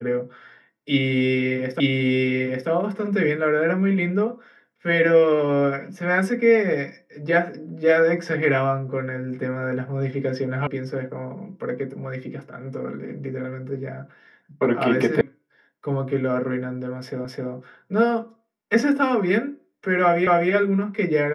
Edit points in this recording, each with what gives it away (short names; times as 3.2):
1.8 repeat of the last 0.89 s
10.67 sound cut off
15.21 sound cut off
17.25 repeat of the last 0.26 s
20.27 repeat of the last 0.25 s